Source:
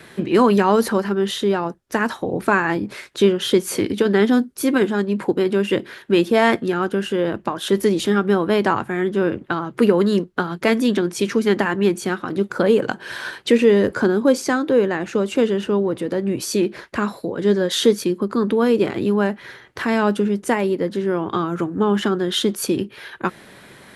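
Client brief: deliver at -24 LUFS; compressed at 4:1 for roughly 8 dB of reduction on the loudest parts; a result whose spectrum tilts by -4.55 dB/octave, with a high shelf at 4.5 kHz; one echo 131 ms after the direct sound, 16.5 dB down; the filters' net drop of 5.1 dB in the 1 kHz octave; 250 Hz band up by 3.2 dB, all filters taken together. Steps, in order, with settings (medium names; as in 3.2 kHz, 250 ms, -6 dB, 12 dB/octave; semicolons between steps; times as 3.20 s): peaking EQ 250 Hz +4.5 dB; peaking EQ 1 kHz -7.5 dB; treble shelf 4.5 kHz +8 dB; compression 4:1, threshold -18 dBFS; delay 131 ms -16.5 dB; trim -1.5 dB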